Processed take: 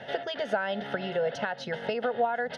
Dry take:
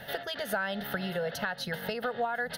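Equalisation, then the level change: cabinet simulation 150–6800 Hz, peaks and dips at 180 Hz -8 dB, 1.2 kHz -7 dB, 1.7 kHz -5 dB, 4.2 kHz -8 dB; treble shelf 4.5 kHz -11 dB; +5.5 dB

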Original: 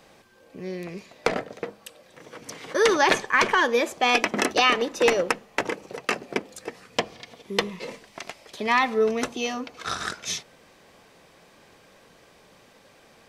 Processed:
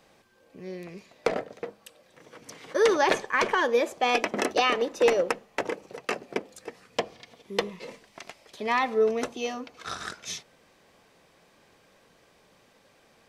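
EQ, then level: dynamic bell 530 Hz, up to +6 dB, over -34 dBFS, Q 0.97; -6.0 dB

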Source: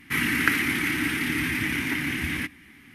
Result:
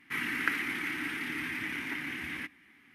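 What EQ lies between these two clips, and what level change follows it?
bass shelf 120 Hz -10.5 dB; bass shelf 360 Hz -8 dB; treble shelf 3.5 kHz -10.5 dB; -5.0 dB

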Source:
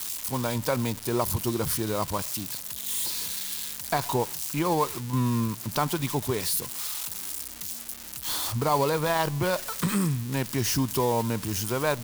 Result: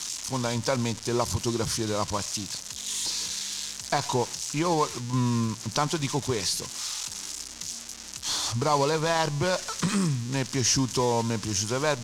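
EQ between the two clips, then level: resonant low-pass 6.3 kHz, resonance Q 2.4; 0.0 dB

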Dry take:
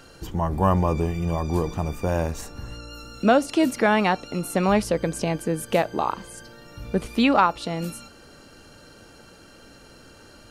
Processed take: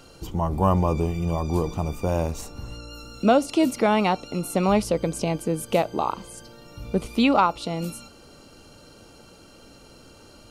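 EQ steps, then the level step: peaking EQ 1.7 kHz -12.5 dB 0.31 oct; 0.0 dB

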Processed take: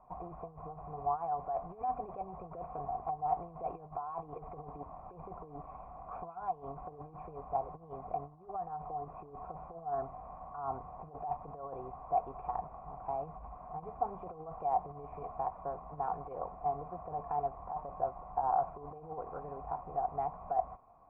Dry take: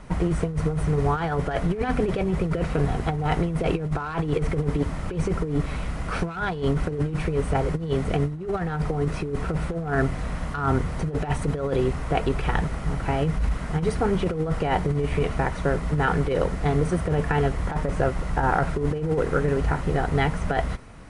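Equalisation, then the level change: cascade formant filter a; distance through air 230 m; +1.0 dB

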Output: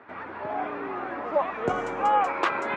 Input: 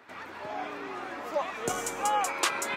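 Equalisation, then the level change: low-pass 1.7 kHz 12 dB/octave; +6.0 dB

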